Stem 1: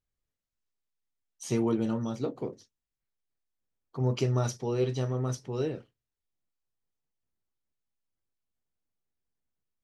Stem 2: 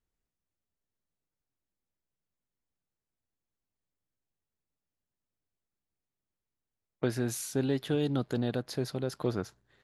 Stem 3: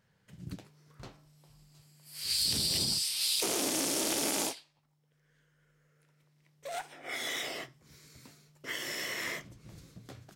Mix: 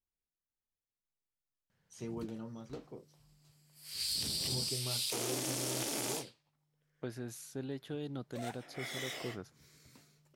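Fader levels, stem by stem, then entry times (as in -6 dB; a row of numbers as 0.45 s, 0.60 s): -14.5 dB, -11.5 dB, -6.0 dB; 0.50 s, 0.00 s, 1.70 s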